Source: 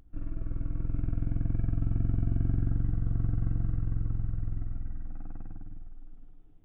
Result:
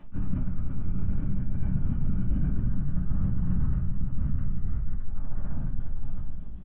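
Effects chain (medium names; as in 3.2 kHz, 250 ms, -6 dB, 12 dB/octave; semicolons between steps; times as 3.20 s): delay 815 ms -14.5 dB; LPC vocoder at 8 kHz whisper; bass shelf 140 Hz -5.5 dB; simulated room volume 150 m³, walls furnished, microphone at 2.5 m; reverse; compression 12:1, threshold -26 dBFS, peak gain reduction 15 dB; reverse; graphic EQ with 31 bands 200 Hz +9 dB, 315 Hz -9 dB, 500 Hz -11 dB, 1.25 kHz +3 dB; trim +6.5 dB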